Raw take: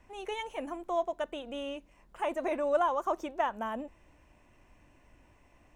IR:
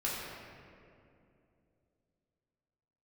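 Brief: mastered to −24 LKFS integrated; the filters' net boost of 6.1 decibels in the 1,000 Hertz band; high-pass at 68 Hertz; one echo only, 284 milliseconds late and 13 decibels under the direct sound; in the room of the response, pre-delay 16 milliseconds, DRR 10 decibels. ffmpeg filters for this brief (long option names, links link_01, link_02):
-filter_complex "[0:a]highpass=68,equalizer=frequency=1000:width_type=o:gain=7.5,aecho=1:1:284:0.224,asplit=2[link_01][link_02];[1:a]atrim=start_sample=2205,adelay=16[link_03];[link_02][link_03]afir=irnorm=-1:irlink=0,volume=-16dB[link_04];[link_01][link_04]amix=inputs=2:normalize=0,volume=5dB"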